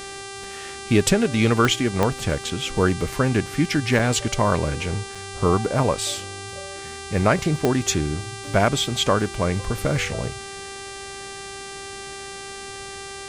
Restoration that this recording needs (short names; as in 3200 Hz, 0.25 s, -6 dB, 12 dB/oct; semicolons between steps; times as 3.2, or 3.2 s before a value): de-click; de-hum 393.4 Hz, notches 26; interpolate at 3.99/5.15, 4.3 ms